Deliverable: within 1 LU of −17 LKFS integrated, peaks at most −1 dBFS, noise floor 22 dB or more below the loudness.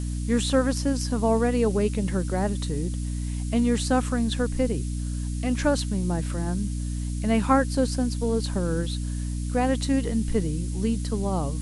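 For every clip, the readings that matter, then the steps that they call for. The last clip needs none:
mains hum 60 Hz; hum harmonics up to 300 Hz; level of the hum −26 dBFS; background noise floor −29 dBFS; target noise floor −48 dBFS; integrated loudness −26.0 LKFS; sample peak −8.5 dBFS; target loudness −17.0 LKFS
→ mains-hum notches 60/120/180/240/300 Hz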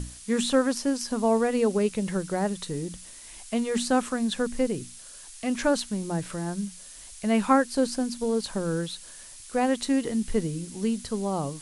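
mains hum none found; background noise floor −46 dBFS; target noise floor −49 dBFS
→ noise reduction from a noise print 6 dB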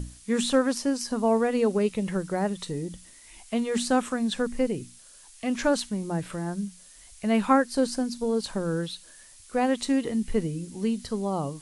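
background noise floor −51 dBFS; integrated loudness −27.0 LKFS; sample peak −9.5 dBFS; target loudness −17.0 LKFS
→ level +10 dB
brickwall limiter −1 dBFS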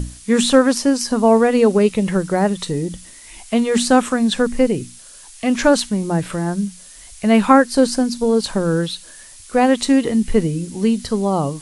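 integrated loudness −17.5 LKFS; sample peak −1.0 dBFS; background noise floor −41 dBFS

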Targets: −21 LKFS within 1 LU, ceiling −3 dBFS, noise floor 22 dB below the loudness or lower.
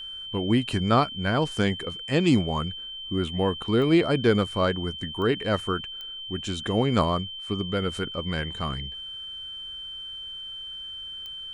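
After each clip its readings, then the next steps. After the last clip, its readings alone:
number of clicks 4; interfering tone 3,100 Hz; level of the tone −35 dBFS; integrated loudness −26.5 LKFS; sample peak −8.5 dBFS; target loudness −21.0 LKFS
→ click removal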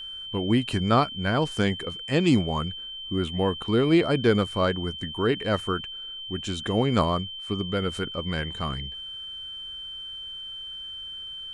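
number of clicks 0; interfering tone 3,100 Hz; level of the tone −35 dBFS
→ notch filter 3,100 Hz, Q 30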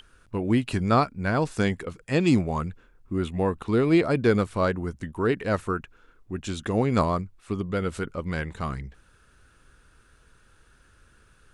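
interfering tone none found; integrated loudness −26.0 LKFS; sample peak −9.0 dBFS; target loudness −21.0 LKFS
→ level +5 dB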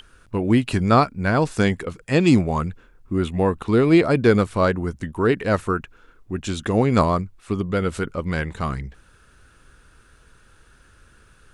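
integrated loudness −21.0 LKFS; sample peak −4.0 dBFS; background noise floor −55 dBFS

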